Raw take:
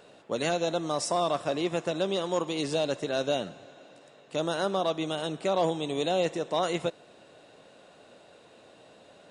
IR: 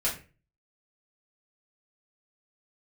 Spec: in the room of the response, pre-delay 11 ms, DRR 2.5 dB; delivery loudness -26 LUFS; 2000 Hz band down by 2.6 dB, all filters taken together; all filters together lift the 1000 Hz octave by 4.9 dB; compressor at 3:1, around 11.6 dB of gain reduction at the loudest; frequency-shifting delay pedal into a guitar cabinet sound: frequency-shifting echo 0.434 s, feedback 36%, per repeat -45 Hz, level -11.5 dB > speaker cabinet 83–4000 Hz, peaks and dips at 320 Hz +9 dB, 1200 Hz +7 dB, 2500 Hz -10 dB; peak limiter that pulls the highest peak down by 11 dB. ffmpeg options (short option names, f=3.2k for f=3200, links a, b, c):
-filter_complex "[0:a]equalizer=f=1k:t=o:g=5,equalizer=f=2k:t=o:g=-4.5,acompressor=threshold=-37dB:ratio=3,alimiter=level_in=10dB:limit=-24dB:level=0:latency=1,volume=-10dB,asplit=2[a][b];[1:a]atrim=start_sample=2205,adelay=11[c];[b][c]afir=irnorm=-1:irlink=0,volume=-10.5dB[d];[a][d]amix=inputs=2:normalize=0,asplit=5[e][f][g][h][i];[f]adelay=434,afreqshift=-45,volume=-11.5dB[j];[g]adelay=868,afreqshift=-90,volume=-20.4dB[k];[h]adelay=1302,afreqshift=-135,volume=-29.2dB[l];[i]adelay=1736,afreqshift=-180,volume=-38.1dB[m];[e][j][k][l][m]amix=inputs=5:normalize=0,highpass=83,equalizer=f=320:t=q:w=4:g=9,equalizer=f=1.2k:t=q:w=4:g=7,equalizer=f=2.5k:t=q:w=4:g=-10,lowpass=f=4k:w=0.5412,lowpass=f=4k:w=1.3066,volume=15dB"